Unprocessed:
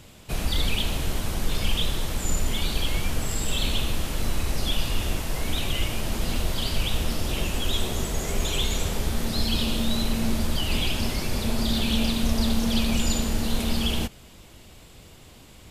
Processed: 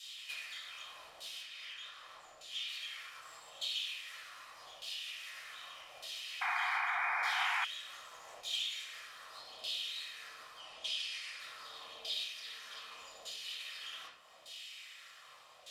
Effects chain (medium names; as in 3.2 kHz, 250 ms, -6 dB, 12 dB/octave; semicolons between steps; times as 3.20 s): comb filter that takes the minimum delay 1.6 ms; compression 6:1, threshold -38 dBFS, peak gain reduction 19 dB; pre-emphasis filter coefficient 0.97; LFO band-pass saw down 0.83 Hz 680–3700 Hz; 1.41–2.67 s: treble shelf 6.1 kHz -> 9.5 kHz -9.5 dB; 10.60–11.40 s: low-pass 11 kHz 24 dB/octave; reverberation RT60 0.70 s, pre-delay 4 ms, DRR -6.5 dB; 6.41–7.65 s: painted sound noise 690–2500 Hz -47 dBFS; trim +12.5 dB